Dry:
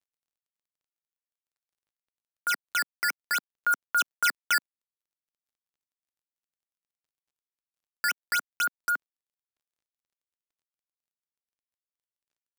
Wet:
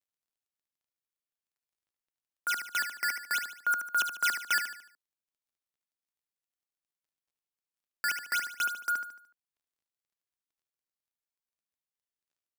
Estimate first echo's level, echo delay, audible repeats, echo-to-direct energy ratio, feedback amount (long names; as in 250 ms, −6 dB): −8.0 dB, 74 ms, 4, −7.0 dB, 42%